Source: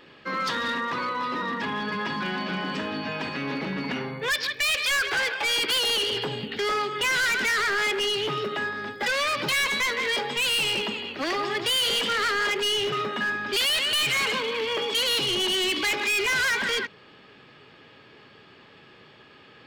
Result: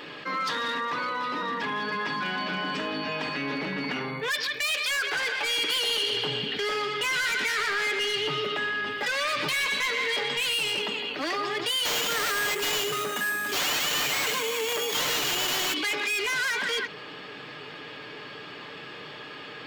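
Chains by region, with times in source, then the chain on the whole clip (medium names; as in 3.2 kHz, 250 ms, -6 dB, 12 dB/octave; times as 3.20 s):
5.14–10.54 s: bass shelf 160 Hz +5 dB + band-passed feedback delay 121 ms, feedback 74%, band-pass 2.8 kHz, level -6.5 dB
11.85–15.74 s: treble shelf 5.3 kHz +10.5 dB + sample-rate reducer 10 kHz + integer overflow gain 19 dB
whole clip: bass shelf 160 Hz -11 dB; comb 6.7 ms, depth 38%; level flattener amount 50%; trim -5 dB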